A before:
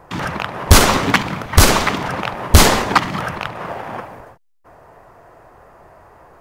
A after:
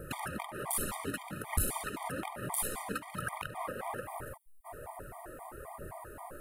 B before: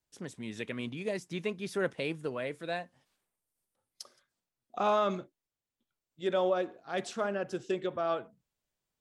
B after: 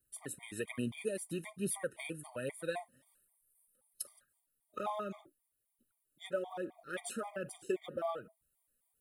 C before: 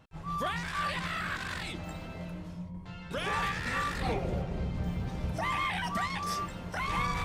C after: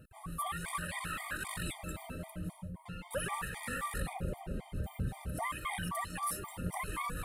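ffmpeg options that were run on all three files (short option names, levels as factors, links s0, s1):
-af "acompressor=threshold=0.0224:ratio=16,aphaser=in_gain=1:out_gain=1:delay=4.4:decay=0.4:speed=1.2:type=triangular,highshelf=f=7700:t=q:w=3:g=11,afftfilt=real='re*gt(sin(2*PI*3.8*pts/sr)*(1-2*mod(floor(b*sr/1024/620),2)),0)':imag='im*gt(sin(2*PI*3.8*pts/sr)*(1-2*mod(floor(b*sr/1024/620),2)),0)':win_size=1024:overlap=0.75,volume=1.12"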